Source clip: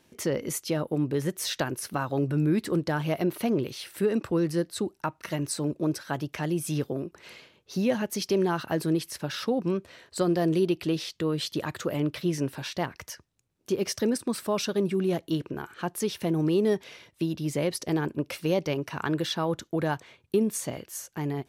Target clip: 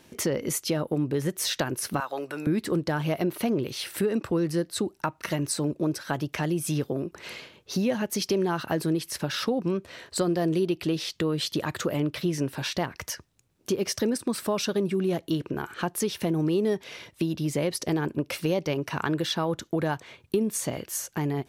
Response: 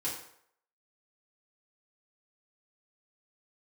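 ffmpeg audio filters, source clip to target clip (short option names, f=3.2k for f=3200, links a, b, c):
-filter_complex "[0:a]asettb=1/sr,asplit=3[a][b][c];[a]atrim=end=2.004[d];[b]atrim=start=2:end=2.47,asetpts=PTS-STARTPTS,afade=t=in:d=0.004:c=qsin,afade=t=out:st=0.466:d=0.004:c=qsin,highpass=700[e];[c]atrim=start=2.466[f];[d][e]acrossfade=d=0.004:c1=hsin:c2=qsin[g];[g][f]acrossfade=d=0.004:c1=qsin:c2=hsin,acompressor=threshold=-36dB:ratio=2,volume=7.5dB"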